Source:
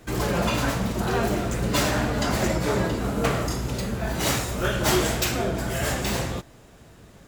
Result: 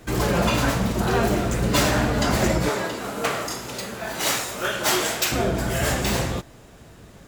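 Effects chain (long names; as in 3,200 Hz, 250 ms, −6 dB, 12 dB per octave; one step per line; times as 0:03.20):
0:02.69–0:05.32: high-pass filter 660 Hz 6 dB per octave
level +3 dB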